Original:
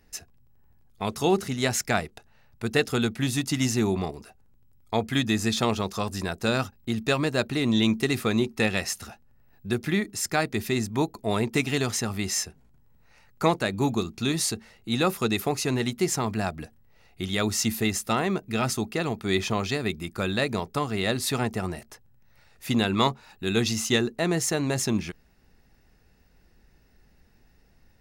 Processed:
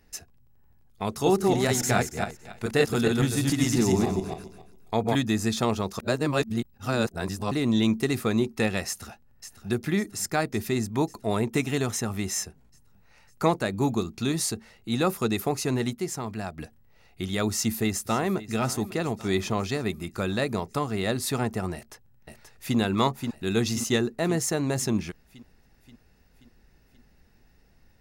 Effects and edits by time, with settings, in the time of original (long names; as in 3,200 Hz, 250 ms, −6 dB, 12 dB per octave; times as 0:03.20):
0:01.12–0:05.18: feedback delay that plays each chunk backwards 140 ms, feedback 40%, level −1 dB
0:05.99–0:07.51: reverse
0:08.87–0:09.69: delay throw 550 ms, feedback 70%, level −12.5 dB
0:11.37–0:12.43: notch filter 4,700 Hz, Q 6.2
0:15.95–0:16.58: clip gain −5.5 dB
0:17.50–0:18.53: delay throw 550 ms, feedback 60%, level −16.5 dB
0:21.74–0:22.77: delay throw 530 ms, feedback 60%, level −5.5 dB
whole clip: dynamic equaliser 3,000 Hz, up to −5 dB, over −41 dBFS, Q 0.78